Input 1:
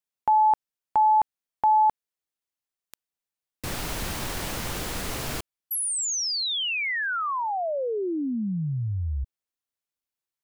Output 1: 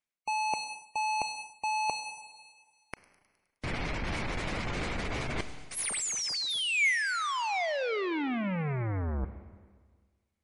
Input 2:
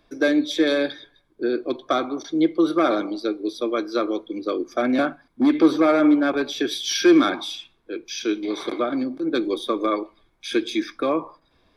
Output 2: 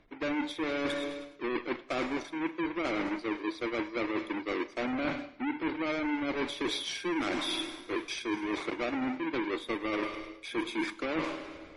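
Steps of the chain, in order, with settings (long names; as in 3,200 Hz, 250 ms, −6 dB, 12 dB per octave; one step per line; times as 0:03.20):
each half-wave held at its own peak
high-shelf EQ 5,900 Hz −6 dB
gate on every frequency bin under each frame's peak −30 dB strong
delay with a high-pass on its return 104 ms, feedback 66%, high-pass 5,000 Hz, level −13.5 dB
four-comb reverb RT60 1.6 s, combs from 31 ms, DRR 16 dB
reversed playback
downward compressor 20 to 1, threshold −30 dBFS
reversed playback
parametric band 2,200 Hz +9 dB 0.33 octaves
MP3 48 kbit/s 44,100 Hz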